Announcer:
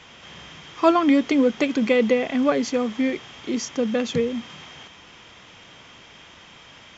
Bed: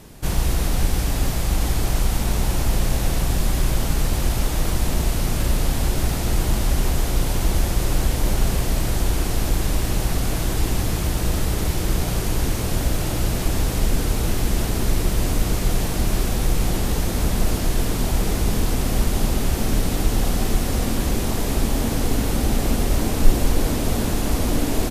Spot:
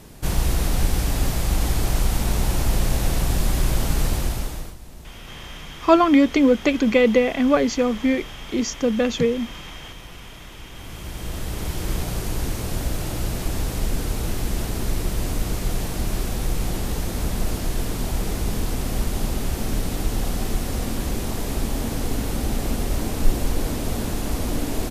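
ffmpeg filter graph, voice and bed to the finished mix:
ffmpeg -i stem1.wav -i stem2.wav -filter_complex "[0:a]adelay=5050,volume=2.5dB[link_01];[1:a]volume=16dB,afade=type=out:start_time=4.07:duration=0.69:silence=0.1,afade=type=in:start_time=10.72:duration=1.19:silence=0.149624[link_02];[link_01][link_02]amix=inputs=2:normalize=0" out.wav

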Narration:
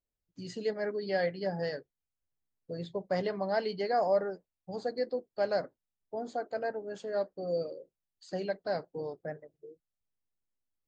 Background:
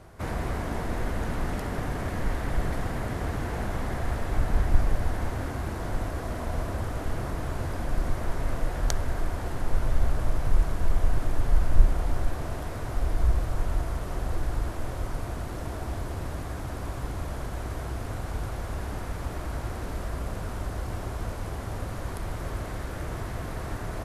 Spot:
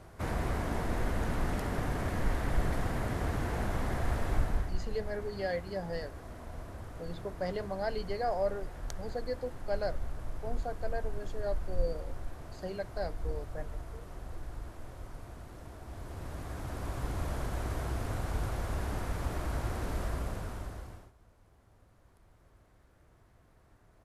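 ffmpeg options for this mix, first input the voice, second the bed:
ffmpeg -i stem1.wav -i stem2.wav -filter_complex "[0:a]adelay=4300,volume=-4dB[link_01];[1:a]volume=9.5dB,afade=type=out:start_time=4.31:duration=0.43:silence=0.281838,afade=type=in:start_time=15.84:duration=1.43:silence=0.251189,afade=type=out:start_time=20.04:duration=1.08:silence=0.0398107[link_02];[link_01][link_02]amix=inputs=2:normalize=0" out.wav

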